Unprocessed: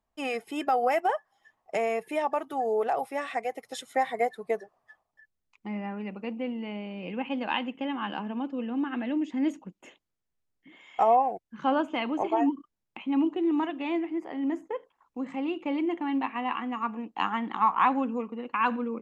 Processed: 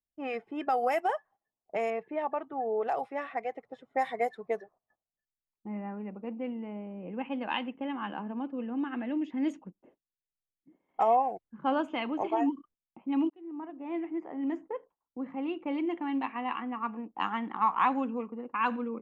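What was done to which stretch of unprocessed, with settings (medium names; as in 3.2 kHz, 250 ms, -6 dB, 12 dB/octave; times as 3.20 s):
1.90–2.88 s: distance through air 300 m
13.30–14.15 s: fade in
whole clip: gate -53 dBFS, range -13 dB; level-controlled noise filter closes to 430 Hz, open at -21.5 dBFS; trim -3 dB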